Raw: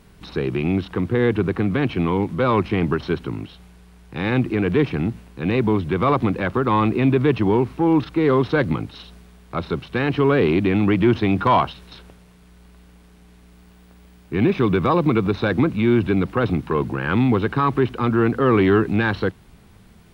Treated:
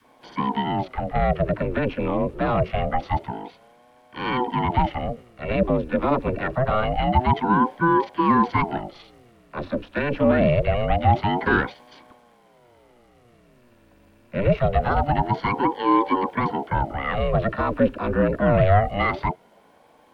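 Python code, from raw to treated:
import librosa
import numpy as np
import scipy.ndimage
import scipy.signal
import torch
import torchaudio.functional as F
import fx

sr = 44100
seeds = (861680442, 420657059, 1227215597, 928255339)

y = fx.small_body(x, sr, hz=(390.0, 840.0, 1600.0, 2500.0), ring_ms=20, db=11)
y = fx.dispersion(y, sr, late='lows', ms=44.0, hz=310.0)
y = fx.ring_lfo(y, sr, carrier_hz=410.0, swing_pct=65, hz=0.25)
y = y * 10.0 ** (-6.0 / 20.0)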